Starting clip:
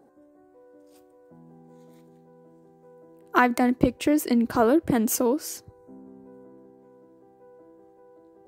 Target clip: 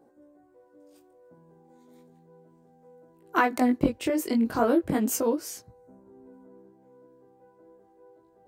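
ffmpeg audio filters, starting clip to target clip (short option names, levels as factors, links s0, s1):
-af "flanger=delay=16.5:depth=5.8:speed=0.35"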